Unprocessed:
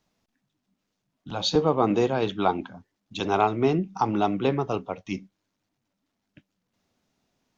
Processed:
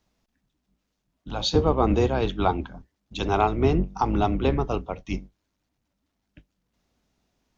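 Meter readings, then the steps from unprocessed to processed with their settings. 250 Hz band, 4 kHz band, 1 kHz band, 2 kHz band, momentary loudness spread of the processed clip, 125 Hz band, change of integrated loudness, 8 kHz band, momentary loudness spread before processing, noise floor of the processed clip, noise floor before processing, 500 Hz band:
+0.5 dB, 0.0 dB, 0.0 dB, 0.0 dB, 13 LU, +5.0 dB, +1.0 dB, no reading, 13 LU, -78 dBFS, -80 dBFS, 0.0 dB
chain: octave divider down 2 oct, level +1 dB

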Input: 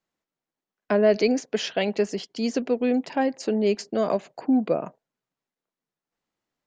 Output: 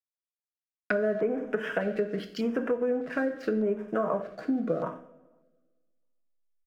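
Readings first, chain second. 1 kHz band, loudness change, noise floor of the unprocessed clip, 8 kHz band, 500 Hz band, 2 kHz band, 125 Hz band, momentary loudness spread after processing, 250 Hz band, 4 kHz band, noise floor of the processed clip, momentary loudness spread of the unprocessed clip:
-5.5 dB, -5.5 dB, under -85 dBFS, no reading, -5.0 dB, -0.5 dB, -3.5 dB, 4 LU, -6.0 dB, -14.0 dB, under -85 dBFS, 7 LU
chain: peaking EQ 1.5 kHz +12 dB 0.69 oct; band-stop 810 Hz, Q 12; feedback delay 93 ms, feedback 34%, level -19.5 dB; low-pass that closes with the level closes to 930 Hz, closed at -20 dBFS; comb 6.3 ms, depth 34%; hysteresis with a dead band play -44 dBFS; two-slope reverb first 0.53 s, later 1.6 s, from -18 dB, DRR 5 dB; LFO notch square 0.83 Hz 920–4300 Hz; dynamic bell 1.1 kHz, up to +5 dB, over -38 dBFS, Q 1.1; compression, threshold -22 dBFS, peak gain reduction 8.5 dB; trim -2 dB

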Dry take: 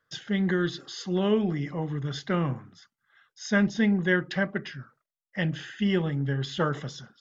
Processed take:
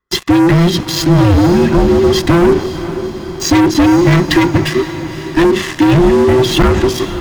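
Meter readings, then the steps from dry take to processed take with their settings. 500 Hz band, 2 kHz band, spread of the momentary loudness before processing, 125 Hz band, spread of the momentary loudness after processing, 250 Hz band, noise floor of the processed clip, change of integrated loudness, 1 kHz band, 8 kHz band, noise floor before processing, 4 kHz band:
+18.5 dB, +11.0 dB, 12 LU, +16.5 dB, 11 LU, +17.0 dB, -25 dBFS, +16.5 dB, +20.0 dB, no reading, under -85 dBFS, +18.5 dB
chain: every band turned upside down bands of 500 Hz; bass shelf 380 Hz +11.5 dB; waveshaping leveller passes 5; compression, threshold -12 dBFS, peak gain reduction 6.5 dB; echo that smears into a reverb 520 ms, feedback 58%, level -12 dB; trim +4 dB

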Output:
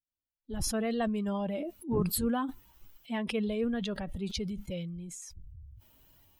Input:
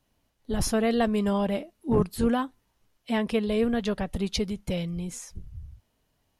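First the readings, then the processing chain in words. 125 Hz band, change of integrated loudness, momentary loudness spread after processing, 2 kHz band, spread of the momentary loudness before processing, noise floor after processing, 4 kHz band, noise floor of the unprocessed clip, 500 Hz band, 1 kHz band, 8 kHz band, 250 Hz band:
-5.5 dB, -6.0 dB, 13 LU, -6.0 dB, 12 LU, under -85 dBFS, -4.5 dB, -73 dBFS, -7.5 dB, -6.5 dB, -1.0 dB, -6.0 dB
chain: expander on every frequency bin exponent 1.5; decay stretcher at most 24 dB/s; trim -5.5 dB

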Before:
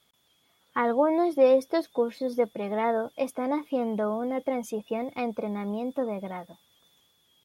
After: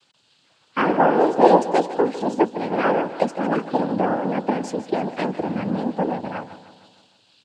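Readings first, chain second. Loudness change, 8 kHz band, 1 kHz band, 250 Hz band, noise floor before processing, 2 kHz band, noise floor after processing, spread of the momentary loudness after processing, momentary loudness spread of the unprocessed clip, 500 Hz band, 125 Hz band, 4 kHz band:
+6.0 dB, +5.0 dB, +10.5 dB, +6.5 dB, -68 dBFS, +9.0 dB, -62 dBFS, 10 LU, 11 LU, +4.5 dB, no reading, +8.0 dB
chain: noise-vocoded speech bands 8; on a send: feedback delay 153 ms, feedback 55%, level -14 dB; on the sum: trim +6.5 dB

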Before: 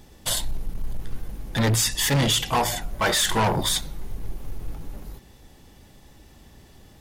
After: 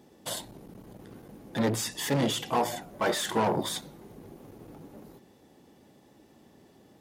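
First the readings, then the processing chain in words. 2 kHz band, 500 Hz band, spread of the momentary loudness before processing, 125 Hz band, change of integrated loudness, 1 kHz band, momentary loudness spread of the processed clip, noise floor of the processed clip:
-8.5 dB, -1.5 dB, 19 LU, -10.5 dB, -7.0 dB, -5.0 dB, 22 LU, -59 dBFS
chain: high-pass 260 Hz 12 dB/octave; tilt shelf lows +7 dB, about 800 Hz; trim -4 dB

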